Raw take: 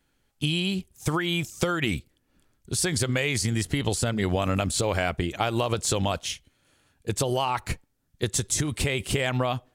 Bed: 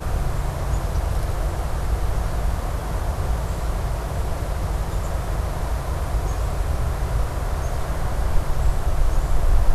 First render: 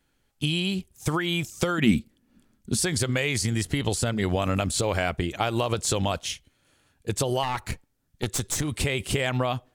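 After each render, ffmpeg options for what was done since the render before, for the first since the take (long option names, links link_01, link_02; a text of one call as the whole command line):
ffmpeg -i in.wav -filter_complex "[0:a]asettb=1/sr,asplit=3[link_01][link_02][link_03];[link_01]atrim=end=1.784[link_04];[link_02]atrim=start=1.78:end=2.8,asetpts=PTS-STARTPTS,afade=type=in:duration=0.004:curve=qsin,afade=type=out:start_time=1.016:duration=0.004:curve=qsin,equalizer=frequency=220:width=2.4:gain=14.5[link_05];[link_03]atrim=start=2.796[link_06];[link_04][link_05]acrossfade=duration=0.004:curve1=hsin:curve2=qsin[link_07];[link_07][link_06]acrossfade=duration=0.004:curve1=qsin:curve2=hsin,asettb=1/sr,asplit=3[link_08][link_09][link_10];[link_08]atrim=end=7.434[link_11];[link_09]atrim=start=7.43:end=8.64,asetpts=PTS-STARTPTS,afade=type=in:duration=0.004:curve=qsin,afade=type=out:start_time=1.206:duration=0.004:curve=qsin,aeval=exprs='clip(val(0),-1,0.0335)':channel_layout=same[link_12];[link_10]atrim=start=8.636[link_13];[link_11][link_12]acrossfade=duration=0.004:curve1=hsin:curve2=qsin[link_14];[link_14][link_13]acrossfade=duration=0.004:curve1=qsin:curve2=hsin" out.wav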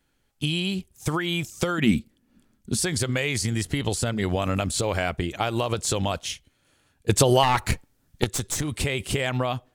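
ffmpeg -i in.wav -filter_complex "[0:a]asplit=3[link_01][link_02][link_03];[link_01]atrim=end=7.092[link_04];[link_02]atrim=start=7.088:end=8.242,asetpts=PTS-STARTPTS,volume=7.5dB[link_05];[link_03]atrim=start=8.238[link_06];[link_04][link_05]acrossfade=duration=0.004:curve1=hsin:curve2=hsin[link_07];[link_07][link_06]acrossfade=duration=0.004:curve1=hsin:curve2=hsin" out.wav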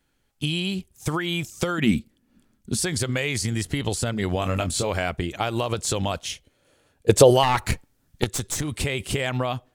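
ffmpeg -i in.wav -filter_complex "[0:a]asettb=1/sr,asplit=3[link_01][link_02][link_03];[link_01]atrim=end=4.384[link_04];[link_02]atrim=start=4.38:end=4.9,asetpts=PTS-STARTPTS,afade=type=in:duration=0.004:curve=qsin,afade=type=out:start_time=0.516:duration=0.004:curve=qsin,asplit=2[link_05][link_06];[link_06]adelay=23,volume=-8dB[link_07];[link_05][link_07]amix=inputs=2:normalize=0,atrim=end_sample=22932[link_08];[link_03]atrim=start=4.896[link_09];[link_04][link_08]acrossfade=duration=0.004:curve1=hsin:curve2=qsin[link_10];[link_10][link_09]acrossfade=duration=0.004:curve1=qsin:curve2=hsin,asettb=1/sr,asplit=3[link_11][link_12][link_13];[link_11]atrim=end=6.324[link_14];[link_12]atrim=start=6.32:end=7.31,asetpts=PTS-STARTPTS,afade=type=in:duration=0.004:curve=qsin,afade=type=out:start_time=0.986:duration=0.004:curve=qsin,equalizer=frequency=510:width=1.5:gain=10[link_15];[link_13]atrim=start=7.306[link_16];[link_14][link_15]acrossfade=duration=0.004:curve1=hsin:curve2=qsin[link_17];[link_17][link_16]acrossfade=duration=0.004:curve1=qsin:curve2=hsin" out.wav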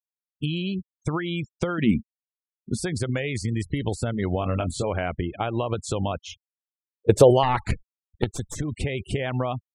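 ffmpeg -i in.wav -af "afftfilt=real='re*gte(hypot(re,im),0.0282)':imag='im*gte(hypot(re,im),0.0282)':win_size=1024:overlap=0.75,highshelf=frequency=2100:gain=-9.5" out.wav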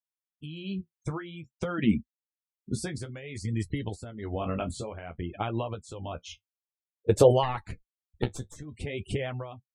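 ffmpeg -i in.wav -af "tremolo=f=1.1:d=0.72,flanger=delay=9.4:depth=6:regen=-34:speed=0.54:shape=sinusoidal" out.wav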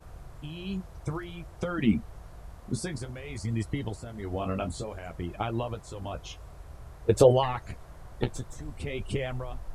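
ffmpeg -i in.wav -i bed.wav -filter_complex "[1:a]volume=-22.5dB[link_01];[0:a][link_01]amix=inputs=2:normalize=0" out.wav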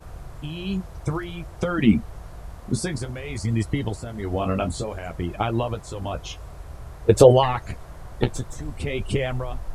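ffmpeg -i in.wav -af "volume=7dB,alimiter=limit=-1dB:level=0:latency=1" out.wav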